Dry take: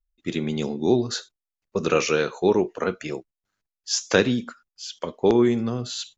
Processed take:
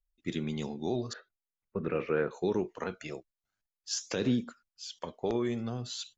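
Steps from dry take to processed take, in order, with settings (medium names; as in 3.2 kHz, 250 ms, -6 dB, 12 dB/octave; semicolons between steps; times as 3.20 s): 1.13–2.31 s: Chebyshev low-pass 2 kHz, order 3; peak limiter -12 dBFS, peak gain reduction 9.5 dB; phaser 0.46 Hz, delay 1.8 ms, feedback 39%; trim -8.5 dB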